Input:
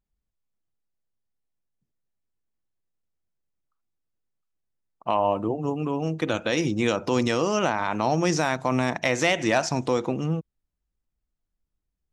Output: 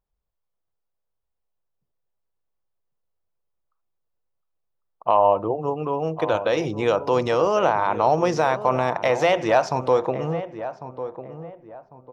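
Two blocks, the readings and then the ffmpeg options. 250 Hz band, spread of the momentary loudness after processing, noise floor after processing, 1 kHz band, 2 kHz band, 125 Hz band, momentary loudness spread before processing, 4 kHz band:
−3.0 dB, 14 LU, −78 dBFS, +6.0 dB, −1.0 dB, −1.5 dB, 5 LU, −3.0 dB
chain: -filter_complex "[0:a]equalizer=frequency=250:width_type=o:width=1:gain=-8,equalizer=frequency=500:width_type=o:width=1:gain=7,equalizer=frequency=1000:width_type=o:width=1:gain=6,equalizer=frequency=2000:width_type=o:width=1:gain=-3,equalizer=frequency=8000:width_type=o:width=1:gain=-12,asplit=2[link_01][link_02];[link_02]adelay=1099,lowpass=frequency=1100:poles=1,volume=-11dB,asplit=2[link_03][link_04];[link_04]adelay=1099,lowpass=frequency=1100:poles=1,volume=0.34,asplit=2[link_05][link_06];[link_06]adelay=1099,lowpass=frequency=1100:poles=1,volume=0.34,asplit=2[link_07][link_08];[link_08]adelay=1099,lowpass=frequency=1100:poles=1,volume=0.34[link_09];[link_03][link_05][link_07][link_09]amix=inputs=4:normalize=0[link_10];[link_01][link_10]amix=inputs=2:normalize=0"

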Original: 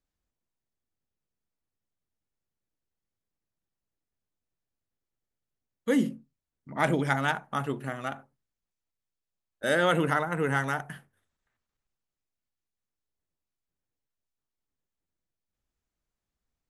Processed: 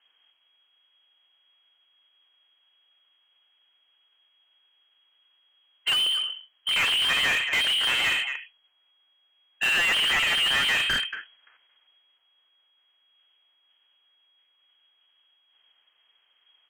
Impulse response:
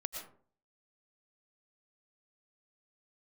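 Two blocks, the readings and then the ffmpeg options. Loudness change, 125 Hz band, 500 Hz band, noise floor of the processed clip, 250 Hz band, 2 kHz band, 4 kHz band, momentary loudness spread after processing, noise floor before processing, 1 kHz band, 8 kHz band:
+6.0 dB, −15.0 dB, −12.5 dB, −68 dBFS, −16.5 dB, +8.0 dB, +21.0 dB, 11 LU, below −85 dBFS, −3.5 dB, +10.5 dB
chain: -filter_complex "[0:a]bandreject=frequency=60:width_type=h:width=6,bandreject=frequency=120:width_type=h:width=6,bandreject=frequency=180:width_type=h:width=6,bandreject=frequency=240:width_type=h:width=6,bandreject=frequency=300:width_type=h:width=6,bandreject=frequency=360:width_type=h:width=6,bandreject=frequency=420:width_type=h:width=6,afftdn=noise_reduction=13:noise_floor=-54,asplit=2[link_01][link_02];[link_02]acompressor=threshold=-37dB:ratio=10,volume=-1dB[link_03];[link_01][link_03]amix=inputs=2:normalize=0,alimiter=limit=-21dB:level=0:latency=1:release=336,acrusher=bits=6:mode=log:mix=0:aa=0.000001,asplit=2[link_04][link_05];[link_05]adelay=230,highpass=300,lowpass=3400,asoftclip=type=hard:threshold=-30.5dB,volume=-21dB[link_06];[link_04][link_06]amix=inputs=2:normalize=0,asoftclip=type=hard:threshold=-29.5dB,lowpass=frequency=2800:width_type=q:width=0.5098,lowpass=frequency=2800:width_type=q:width=0.6013,lowpass=frequency=2800:width_type=q:width=0.9,lowpass=frequency=2800:width_type=q:width=2.563,afreqshift=-3300,asplit=2[link_07][link_08];[link_08]highpass=frequency=720:poles=1,volume=31dB,asoftclip=type=tanh:threshold=-22dB[link_09];[link_07][link_09]amix=inputs=2:normalize=0,lowpass=frequency=2100:poles=1,volume=-6dB,volume=8dB"

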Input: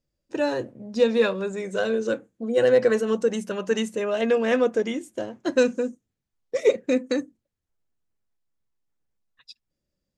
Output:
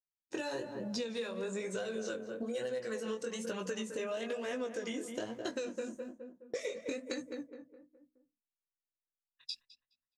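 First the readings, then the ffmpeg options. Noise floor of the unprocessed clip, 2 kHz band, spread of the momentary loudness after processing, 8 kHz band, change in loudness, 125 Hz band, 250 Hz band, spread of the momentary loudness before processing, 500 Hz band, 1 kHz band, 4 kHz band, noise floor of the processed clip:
−83 dBFS, −13.0 dB, 8 LU, −5.5 dB, −15.5 dB, can't be measured, −13.5 dB, 10 LU, −16.0 dB, −13.0 dB, −8.0 dB, below −85 dBFS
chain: -filter_complex "[0:a]agate=range=-33dB:threshold=-49dB:ratio=3:detection=peak,acrossover=split=1100|7000[link_01][link_02][link_03];[link_01]acompressor=threshold=-29dB:ratio=4[link_04];[link_02]acompressor=threshold=-43dB:ratio=4[link_05];[link_03]acompressor=threshold=-59dB:ratio=4[link_06];[link_04][link_05][link_06]amix=inputs=3:normalize=0,asplit=2[link_07][link_08];[link_08]adelay=209,lowpass=frequency=1400:poles=1,volume=-9.5dB,asplit=2[link_09][link_10];[link_10]adelay=209,lowpass=frequency=1400:poles=1,volume=0.45,asplit=2[link_11][link_12];[link_12]adelay=209,lowpass=frequency=1400:poles=1,volume=0.45,asplit=2[link_13][link_14];[link_14]adelay=209,lowpass=frequency=1400:poles=1,volume=0.45,asplit=2[link_15][link_16];[link_16]adelay=209,lowpass=frequency=1400:poles=1,volume=0.45[link_17];[link_09][link_11][link_13][link_15][link_17]amix=inputs=5:normalize=0[link_18];[link_07][link_18]amix=inputs=2:normalize=0,flanger=delay=15.5:depth=7.4:speed=1.1,highshelf=frequency=2000:gain=10,acompressor=threshold=-37dB:ratio=6,volume=2dB"

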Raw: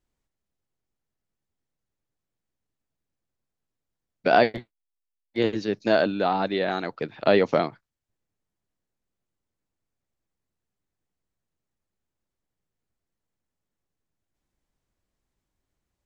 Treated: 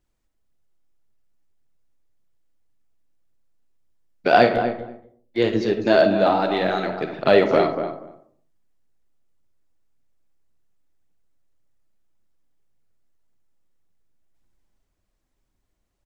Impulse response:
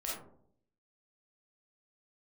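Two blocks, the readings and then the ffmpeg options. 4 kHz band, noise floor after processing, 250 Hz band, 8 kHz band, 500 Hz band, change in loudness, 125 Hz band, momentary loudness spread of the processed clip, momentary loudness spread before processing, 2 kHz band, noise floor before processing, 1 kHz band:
+3.5 dB, −73 dBFS, +4.5 dB, can't be measured, +5.0 dB, +4.5 dB, +4.0 dB, 14 LU, 11 LU, +3.5 dB, −85 dBFS, +4.5 dB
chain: -filter_complex "[0:a]aphaser=in_gain=1:out_gain=1:delay=4.2:decay=0.37:speed=1.8:type=triangular,asplit=2[link_01][link_02];[link_02]adelay=240,lowpass=frequency=1500:poles=1,volume=-8dB,asplit=2[link_03][link_04];[link_04]adelay=240,lowpass=frequency=1500:poles=1,volume=0.15[link_05];[link_01][link_03][link_05]amix=inputs=3:normalize=0,asplit=2[link_06][link_07];[1:a]atrim=start_sample=2205,afade=type=out:start_time=0.42:duration=0.01,atrim=end_sample=18963[link_08];[link_07][link_08]afir=irnorm=-1:irlink=0,volume=-6dB[link_09];[link_06][link_09]amix=inputs=2:normalize=0"

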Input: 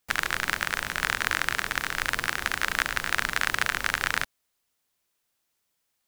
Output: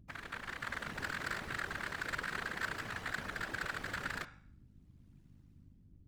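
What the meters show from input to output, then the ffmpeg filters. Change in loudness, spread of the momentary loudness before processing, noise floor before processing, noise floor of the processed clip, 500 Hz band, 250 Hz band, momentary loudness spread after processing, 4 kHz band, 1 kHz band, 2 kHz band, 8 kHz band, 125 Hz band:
−13.0 dB, 3 LU, −77 dBFS, −62 dBFS, −7.5 dB, −5.5 dB, 5 LU, −15.5 dB, −12.0 dB, −12.5 dB, −18.0 dB, −5.5 dB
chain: -af "highpass=41,aemphasis=mode=reproduction:type=75kf,bandreject=frequency=278.6:width_type=h:width=4,bandreject=frequency=557.2:width_type=h:width=4,bandreject=frequency=835.8:width_type=h:width=4,bandreject=frequency=1114.4:width_type=h:width=4,bandreject=frequency=1393:width_type=h:width=4,bandreject=frequency=1671.6:width_type=h:width=4,bandreject=frequency=1950.2:width_type=h:width=4,bandreject=frequency=2228.8:width_type=h:width=4,bandreject=frequency=2507.4:width_type=h:width=4,bandreject=frequency=2786:width_type=h:width=4,bandreject=frequency=3064.6:width_type=h:width=4,bandreject=frequency=3343.2:width_type=h:width=4,bandreject=frequency=3621.8:width_type=h:width=4,bandreject=frequency=3900.4:width_type=h:width=4,bandreject=frequency=4179:width_type=h:width=4,bandreject=frequency=4457.6:width_type=h:width=4,bandreject=frequency=4736.2:width_type=h:width=4,bandreject=frequency=5014.8:width_type=h:width=4,bandreject=frequency=5293.4:width_type=h:width=4,bandreject=frequency=5572:width_type=h:width=4,bandreject=frequency=5850.6:width_type=h:width=4,bandreject=frequency=6129.2:width_type=h:width=4,bandreject=frequency=6407.8:width_type=h:width=4,bandreject=frequency=6686.4:width_type=h:width=4,bandreject=frequency=6965:width_type=h:width=4,bandreject=frequency=7243.6:width_type=h:width=4,bandreject=frequency=7522.2:width_type=h:width=4,bandreject=frequency=7800.8:width_type=h:width=4,bandreject=frequency=8079.4:width_type=h:width=4,bandreject=frequency=8358:width_type=h:width=4,bandreject=frequency=8636.6:width_type=h:width=4,bandreject=frequency=8915.2:width_type=h:width=4,bandreject=frequency=9193.8:width_type=h:width=4,dynaudnorm=framelen=120:gausssize=11:maxgain=16dB,asoftclip=type=tanh:threshold=-13.5dB,aeval=exprs='val(0)*sin(2*PI*36*n/s)':channel_layout=same,aeval=exprs='val(0)+0.00398*(sin(2*PI*50*n/s)+sin(2*PI*2*50*n/s)/2+sin(2*PI*3*50*n/s)/3+sin(2*PI*4*50*n/s)/4+sin(2*PI*5*50*n/s)/5)':channel_layout=same,afftfilt=real='hypot(re,im)*cos(2*PI*random(0))':imag='hypot(re,im)*sin(2*PI*random(1))':win_size=512:overlap=0.75,volume=-3.5dB"

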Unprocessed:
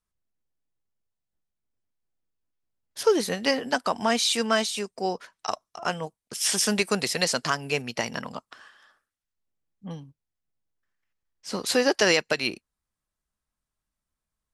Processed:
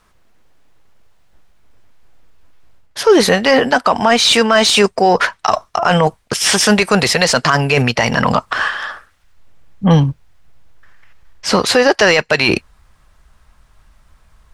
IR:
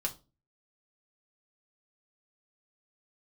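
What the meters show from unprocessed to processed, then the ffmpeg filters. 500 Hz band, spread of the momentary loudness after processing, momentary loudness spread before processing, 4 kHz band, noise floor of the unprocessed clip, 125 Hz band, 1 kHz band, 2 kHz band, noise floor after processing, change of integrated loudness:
+13.0 dB, 8 LU, 19 LU, +12.0 dB, below −85 dBFS, +20.5 dB, +15.0 dB, +14.0 dB, −55 dBFS, +12.0 dB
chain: -filter_complex "[0:a]asubboost=boost=4:cutoff=120,areverse,acompressor=threshold=-36dB:ratio=12,areverse,asplit=2[link_01][link_02];[link_02]highpass=frequency=720:poles=1,volume=8dB,asoftclip=type=tanh:threshold=-25.5dB[link_03];[link_01][link_03]amix=inputs=2:normalize=0,lowpass=frequency=1500:poles=1,volume=-6dB,alimiter=level_in=34dB:limit=-1dB:release=50:level=0:latency=1,volume=-1dB"

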